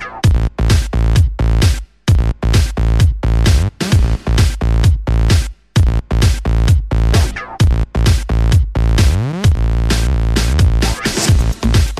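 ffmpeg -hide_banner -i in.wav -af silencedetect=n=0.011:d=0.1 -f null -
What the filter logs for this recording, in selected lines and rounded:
silence_start: 1.85
silence_end: 2.07 | silence_duration: 0.22
silence_start: 5.53
silence_end: 5.76 | silence_duration: 0.22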